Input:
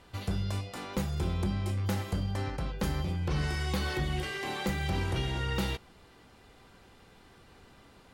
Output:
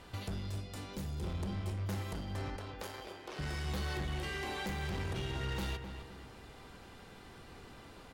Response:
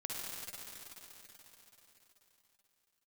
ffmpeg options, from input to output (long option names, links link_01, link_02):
-filter_complex "[0:a]volume=30.5dB,asoftclip=hard,volume=-30.5dB,acompressor=threshold=-46dB:ratio=2,asettb=1/sr,asplit=3[link_01][link_02][link_03];[link_01]atrim=end=0.474[link_04];[link_02]atrim=start=0.47:end=1.24,asetpts=PTS-STARTPTS,afade=type=in:duration=0.004:curve=qsin,afade=type=out:start_time=0.766:duration=0.004:curve=qsin,equalizer=frequency=1100:width_type=o:width=2.8:gain=-8[link_05];[link_03]atrim=start=1.236[link_06];[link_04][link_05]acrossfade=duration=0.004:curve1=hsin:curve2=qsin[link_07];[link_07][link_06]acrossfade=duration=0.004:curve1=qsin:curve2=hsin,asettb=1/sr,asplit=3[link_08][link_09][link_10];[link_08]atrim=end=2.564[link_11];[link_09]atrim=start=2.56:end=3.39,asetpts=PTS-STARTPTS,afade=type=in:duration=0.004:curve=qsin,afade=type=out:start_time=0.826:duration=0.004:curve=qsin,highpass=frequency=340:width=0.5412,highpass=frequency=340:width=1.3066[link_12];[link_10]atrim=start=3.386[link_13];[link_11][link_12]acrossfade=duration=0.004:curve1=hsin:curve2=qsin[link_14];[link_14][link_13]acrossfade=duration=0.004:curve1=qsin:curve2=hsin,asplit=2[link_15][link_16];[link_16]adelay=258,lowpass=frequency=2500:poles=1,volume=-7.5dB,asplit=2[link_17][link_18];[link_18]adelay=258,lowpass=frequency=2500:poles=1,volume=0.41,asplit=2[link_19][link_20];[link_20]adelay=258,lowpass=frequency=2500:poles=1,volume=0.41,asplit=2[link_21][link_22];[link_22]adelay=258,lowpass=frequency=2500:poles=1,volume=0.41,asplit=2[link_23][link_24];[link_24]adelay=258,lowpass=frequency=2500:poles=1,volume=0.41[link_25];[link_15][link_17][link_19][link_21][link_23][link_25]amix=inputs=6:normalize=0,volume=3dB"